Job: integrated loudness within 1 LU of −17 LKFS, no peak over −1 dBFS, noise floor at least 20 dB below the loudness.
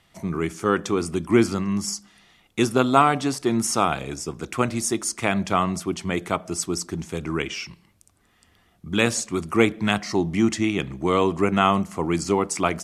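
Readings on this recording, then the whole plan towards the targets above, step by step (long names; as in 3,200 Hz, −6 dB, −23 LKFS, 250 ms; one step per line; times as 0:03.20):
integrated loudness −23.5 LKFS; sample peak −2.5 dBFS; target loudness −17.0 LKFS
→ level +6.5 dB
brickwall limiter −1 dBFS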